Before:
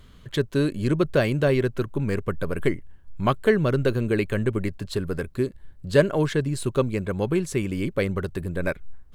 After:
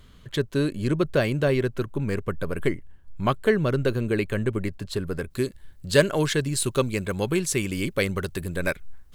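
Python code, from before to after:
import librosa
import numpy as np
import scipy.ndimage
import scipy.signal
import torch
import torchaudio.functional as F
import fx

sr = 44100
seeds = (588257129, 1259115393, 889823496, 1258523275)

y = fx.high_shelf(x, sr, hz=2200.0, db=fx.steps((0.0, 2.0), (5.3, 12.0)))
y = F.gain(torch.from_numpy(y), -1.5).numpy()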